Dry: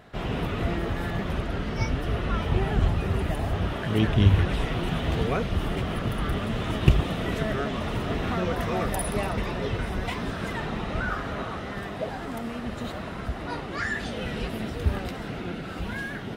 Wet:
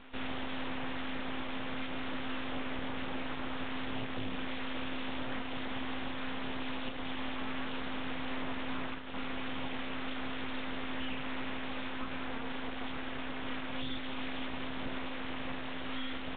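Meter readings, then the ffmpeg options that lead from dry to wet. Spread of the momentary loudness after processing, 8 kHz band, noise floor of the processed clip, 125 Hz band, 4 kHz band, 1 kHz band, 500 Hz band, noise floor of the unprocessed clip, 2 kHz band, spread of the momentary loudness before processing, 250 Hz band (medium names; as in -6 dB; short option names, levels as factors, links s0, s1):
2 LU, under -35 dB, -38 dBFS, -22.5 dB, -4.0 dB, -8.5 dB, -13.0 dB, -36 dBFS, -6.5 dB, 9 LU, -9.0 dB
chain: -af "highpass=72,aemphasis=mode=production:type=bsi,acompressor=threshold=0.0282:ratio=6,aresample=11025,asoftclip=type=tanh:threshold=0.0266,aresample=44100,aeval=exprs='val(0)*sin(2*PI*130*n/s)':c=same,aeval=exprs='abs(val(0))':c=same,aresample=8000,aresample=44100,volume=1.88"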